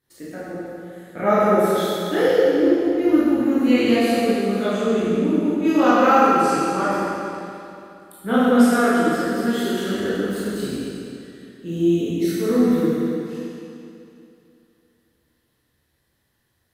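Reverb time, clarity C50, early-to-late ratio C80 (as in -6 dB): 2.7 s, -5.0 dB, -2.5 dB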